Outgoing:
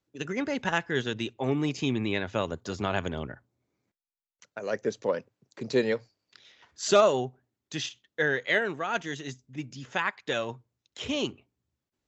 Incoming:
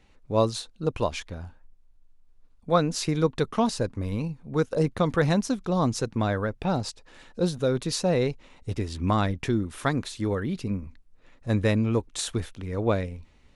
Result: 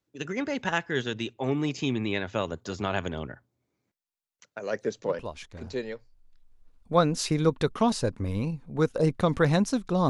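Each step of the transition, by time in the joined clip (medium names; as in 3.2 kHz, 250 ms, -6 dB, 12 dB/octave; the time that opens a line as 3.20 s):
outgoing
5.63 s: go over to incoming from 1.40 s, crossfade 1.66 s linear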